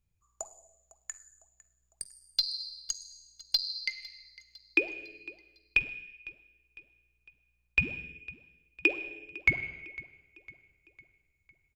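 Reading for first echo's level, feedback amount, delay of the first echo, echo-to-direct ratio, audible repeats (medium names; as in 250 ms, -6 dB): -20.0 dB, 50%, 504 ms, -19.0 dB, 3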